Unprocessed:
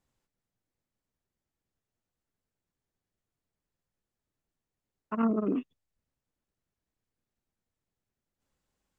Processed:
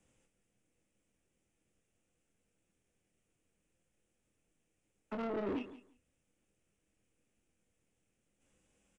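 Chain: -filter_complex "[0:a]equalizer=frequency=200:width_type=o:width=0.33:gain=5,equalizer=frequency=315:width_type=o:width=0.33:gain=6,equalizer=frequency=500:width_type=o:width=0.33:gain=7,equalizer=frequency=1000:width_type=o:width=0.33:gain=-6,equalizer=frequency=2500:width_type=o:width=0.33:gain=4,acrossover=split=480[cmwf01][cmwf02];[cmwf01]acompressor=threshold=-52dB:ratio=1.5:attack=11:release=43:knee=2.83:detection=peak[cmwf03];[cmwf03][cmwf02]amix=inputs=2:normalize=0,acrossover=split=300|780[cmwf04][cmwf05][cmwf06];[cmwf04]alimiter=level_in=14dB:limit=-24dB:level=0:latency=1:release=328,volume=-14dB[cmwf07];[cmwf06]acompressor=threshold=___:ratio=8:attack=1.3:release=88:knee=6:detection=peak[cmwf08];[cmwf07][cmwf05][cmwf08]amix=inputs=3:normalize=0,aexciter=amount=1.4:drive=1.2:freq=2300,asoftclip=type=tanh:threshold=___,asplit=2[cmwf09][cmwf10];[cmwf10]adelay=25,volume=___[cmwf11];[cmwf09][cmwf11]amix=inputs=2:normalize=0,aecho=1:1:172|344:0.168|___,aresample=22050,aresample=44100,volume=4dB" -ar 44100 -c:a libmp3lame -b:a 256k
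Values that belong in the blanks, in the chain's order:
-48dB, -39dB, -6.5dB, 0.0269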